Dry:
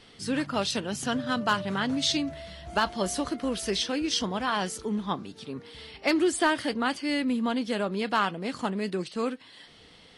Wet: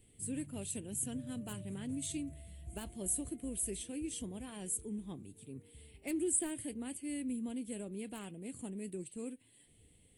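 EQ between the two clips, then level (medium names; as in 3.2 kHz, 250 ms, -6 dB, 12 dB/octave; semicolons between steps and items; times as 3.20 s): FFT filter 110 Hz 0 dB, 180 Hz -9 dB, 340 Hz -8 dB, 1.3 kHz -30 dB, 2.4 kHz -14 dB, 5.3 kHz -27 dB, 8 kHz +5 dB, 12 kHz +7 dB; -2.5 dB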